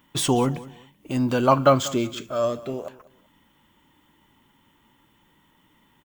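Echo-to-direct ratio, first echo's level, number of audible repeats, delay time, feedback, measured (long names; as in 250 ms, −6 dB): −18.5 dB, −19.0 dB, 2, 191 ms, 26%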